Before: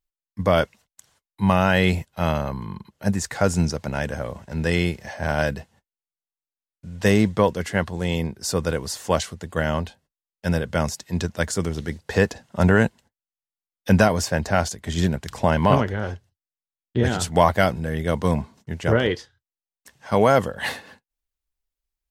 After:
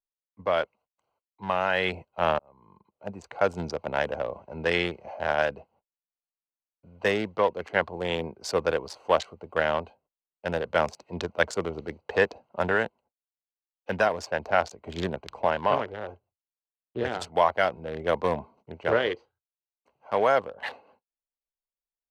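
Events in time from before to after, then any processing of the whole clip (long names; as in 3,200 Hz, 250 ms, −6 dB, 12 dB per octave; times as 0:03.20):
0:02.39–0:03.80: fade in
whole clip: adaptive Wiener filter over 25 samples; three-way crossover with the lows and the highs turned down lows −18 dB, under 400 Hz, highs −15 dB, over 4,600 Hz; speech leveller within 4 dB 0.5 s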